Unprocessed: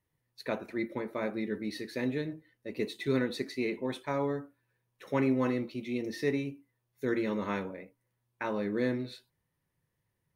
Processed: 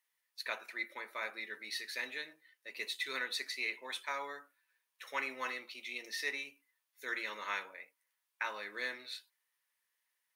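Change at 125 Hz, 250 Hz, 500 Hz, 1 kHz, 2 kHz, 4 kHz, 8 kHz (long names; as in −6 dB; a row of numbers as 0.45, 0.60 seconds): below −35 dB, −25.0 dB, −15.5 dB, −3.0 dB, +3.0 dB, +4.5 dB, +4.5 dB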